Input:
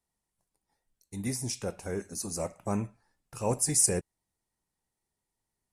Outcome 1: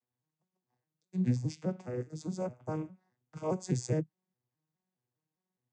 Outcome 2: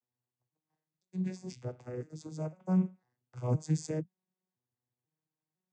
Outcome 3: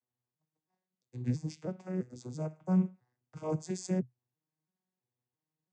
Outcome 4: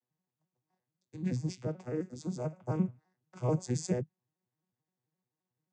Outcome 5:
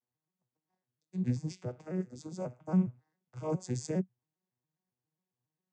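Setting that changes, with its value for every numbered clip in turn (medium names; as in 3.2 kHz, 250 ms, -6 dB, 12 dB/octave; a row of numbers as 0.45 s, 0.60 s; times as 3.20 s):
vocoder on a broken chord, a note every: 206 ms, 504 ms, 333 ms, 87 ms, 136 ms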